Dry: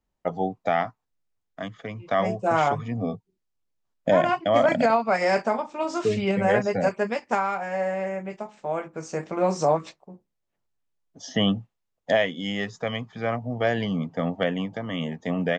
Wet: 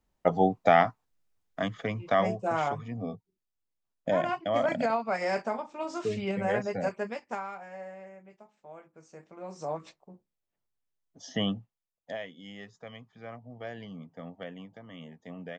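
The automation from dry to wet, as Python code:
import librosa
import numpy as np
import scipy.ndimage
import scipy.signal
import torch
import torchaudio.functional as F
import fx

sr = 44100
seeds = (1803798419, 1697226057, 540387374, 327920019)

y = fx.gain(x, sr, db=fx.line((1.89, 3.0), (2.55, -7.5), (6.96, -7.5), (8.19, -19.5), (9.44, -19.5), (9.98, -6.5), (11.4, -6.5), (12.14, -16.5)))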